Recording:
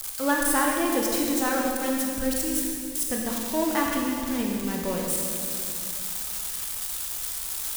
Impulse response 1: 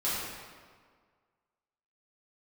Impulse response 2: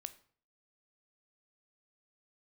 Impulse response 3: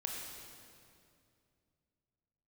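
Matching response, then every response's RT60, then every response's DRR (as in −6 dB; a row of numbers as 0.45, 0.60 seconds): 3; 1.7, 0.50, 2.4 seconds; −11.0, 11.0, −1.0 decibels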